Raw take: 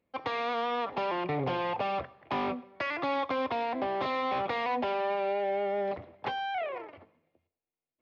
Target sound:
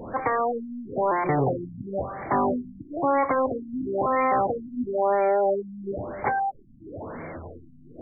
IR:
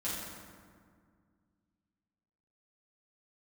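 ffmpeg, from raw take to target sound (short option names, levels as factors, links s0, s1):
-af "aeval=exprs='val(0)+0.5*0.0133*sgn(val(0))':c=same,bandreject=f=88.15:t=h:w=4,bandreject=f=176.3:t=h:w=4,bandreject=f=264.45:t=h:w=4,bandreject=f=352.6:t=h:w=4,bandreject=f=440.75:t=h:w=4,bandreject=f=528.9:t=h:w=4,afftfilt=real='re*lt(b*sr/1024,280*pow(2400/280,0.5+0.5*sin(2*PI*1*pts/sr)))':imag='im*lt(b*sr/1024,280*pow(2400/280,0.5+0.5*sin(2*PI*1*pts/sr)))':win_size=1024:overlap=0.75,volume=2.37"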